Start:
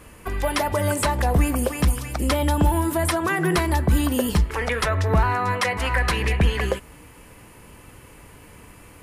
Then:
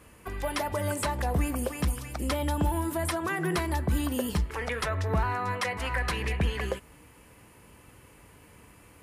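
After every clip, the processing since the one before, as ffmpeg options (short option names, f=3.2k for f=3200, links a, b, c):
-af "highpass=43,volume=-7.5dB"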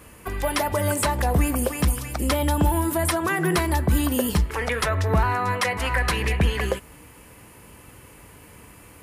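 -af "highshelf=f=12k:g=7.5,volume=6.5dB"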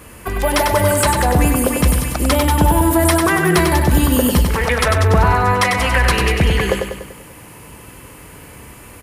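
-af "acontrast=84,aecho=1:1:97|194|291|388|485|582|679:0.562|0.298|0.158|0.0837|0.0444|0.0235|0.0125"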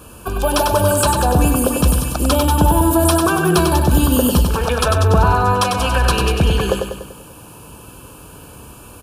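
-af "asuperstop=centerf=2000:order=4:qfactor=2.3"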